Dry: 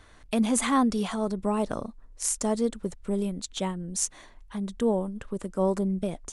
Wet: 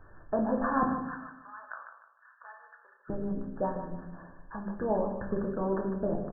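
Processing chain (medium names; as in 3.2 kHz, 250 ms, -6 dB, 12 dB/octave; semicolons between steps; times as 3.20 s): 0.83–3.10 s: high-pass 1.3 kHz 24 dB/octave; harmonic-percussive split harmonic -11 dB; brick-wall FIR low-pass 1.8 kHz; feedback delay 152 ms, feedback 33%, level -9 dB; simulated room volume 97 m³, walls mixed, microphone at 0.67 m; trim +2 dB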